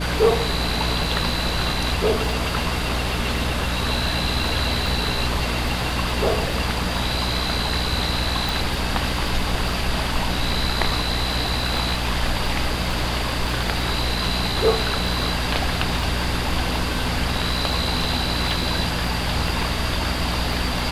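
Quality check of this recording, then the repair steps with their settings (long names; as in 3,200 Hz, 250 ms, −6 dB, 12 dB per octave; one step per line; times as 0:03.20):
surface crackle 27 per second −28 dBFS
mains hum 60 Hz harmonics 5 −27 dBFS
0:08.49: click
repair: click removal
hum removal 60 Hz, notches 5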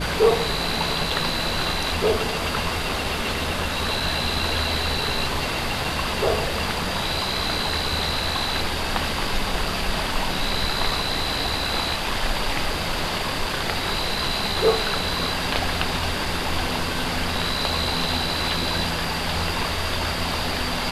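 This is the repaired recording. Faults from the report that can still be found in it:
none of them is left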